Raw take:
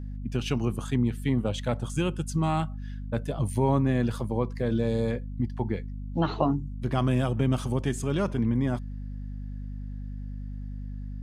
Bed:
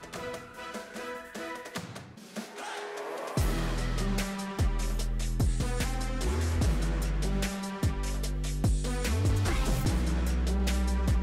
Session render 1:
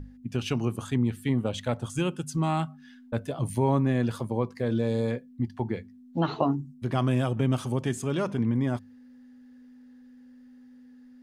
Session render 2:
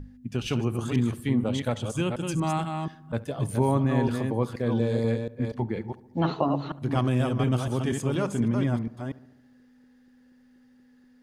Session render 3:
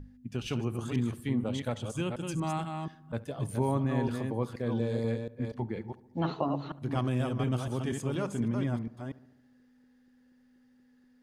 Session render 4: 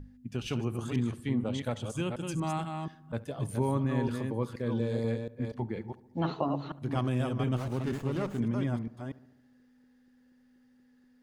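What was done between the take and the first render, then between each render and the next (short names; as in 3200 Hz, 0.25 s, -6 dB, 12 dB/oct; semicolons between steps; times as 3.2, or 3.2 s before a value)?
notches 50/100/150/200 Hz
reverse delay 0.24 s, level -5 dB; darkening echo 71 ms, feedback 64%, low-pass 2300 Hz, level -19 dB
gain -5.5 dB
0.97–1.6 LPF 9000 Hz; 3.58–4.92 bell 720 Hz -11 dB 0.2 oct; 7.56–8.39 running maximum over 9 samples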